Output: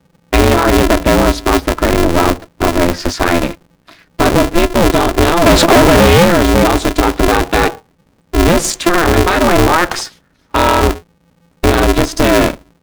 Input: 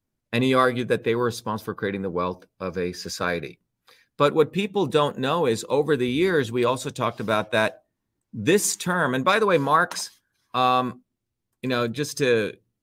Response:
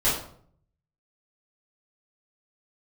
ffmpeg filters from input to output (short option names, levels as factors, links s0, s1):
-filter_complex "[0:a]aemphasis=mode=reproduction:type=bsi,asettb=1/sr,asplit=3[s0][s1][s2];[s0]atrim=end=5.464[s3];[s1]atrim=start=5.46:end=6.25,asetpts=PTS-STARTPTS,afade=t=in:d=0.004:c=qsin,afade=t=out:st=0.786:d=0.004:c=qsin,asplit=2[s4][s5];[s5]highpass=f=720:p=1,volume=25.1,asoftclip=type=tanh:threshold=0.376[s6];[s4][s6]amix=inputs=2:normalize=0,lowpass=f=2700:p=1,volume=0.501[s7];[s2]atrim=start=6.246[s8];[s3][s7]acrossfade=d=0.004:c1=hsin:c2=qsin[s9];[s9][s8]acrossfade=d=0.004:c1=qsin:c2=hsin,alimiter=level_in=6.31:limit=0.891:release=50:level=0:latency=1,aeval=exprs='val(0)*sgn(sin(2*PI*170*n/s))':c=same,volume=0.891"